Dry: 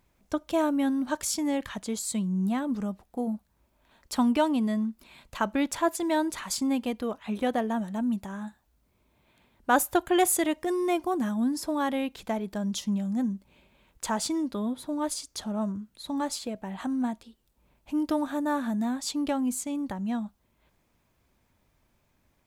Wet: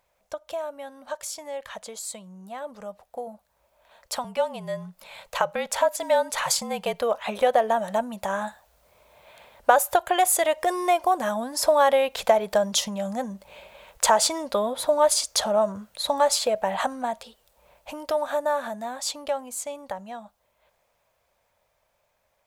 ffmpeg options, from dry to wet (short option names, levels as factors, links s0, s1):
-filter_complex "[0:a]asettb=1/sr,asplit=3[s0][s1][s2];[s0]atrim=end=4.244[s3];[s1]atrim=start=4.24:end=7.01,asetpts=PTS-STARTPTS,afade=t=in:d=0.004:c=qsin,afade=t=out:st=2.766:d=0.004:c=qsin,afreqshift=-43[s4];[s2]atrim=start=7.006[s5];[s3][s4]acrossfade=d=0.004:c1=hsin:c2=qsin[s6];[s6][s5]acrossfade=d=0.004:c1=qsin:c2=hsin,acompressor=threshold=0.0282:ratio=6,lowshelf=f=410:t=q:w=3:g=-10.5,dynaudnorm=f=350:g=31:m=6.68"